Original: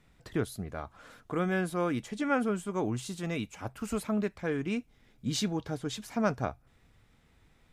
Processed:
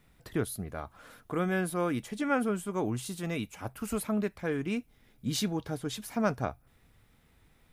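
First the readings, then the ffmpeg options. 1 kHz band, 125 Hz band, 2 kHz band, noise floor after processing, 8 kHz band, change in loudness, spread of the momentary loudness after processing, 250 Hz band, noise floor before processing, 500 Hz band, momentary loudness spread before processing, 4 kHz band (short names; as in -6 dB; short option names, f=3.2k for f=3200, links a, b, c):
0.0 dB, 0.0 dB, 0.0 dB, -65 dBFS, +2.0 dB, 0.0 dB, 8 LU, 0.0 dB, -65 dBFS, 0.0 dB, 9 LU, 0.0 dB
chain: -af "aexciter=amount=2.8:drive=5.4:freq=9.6k"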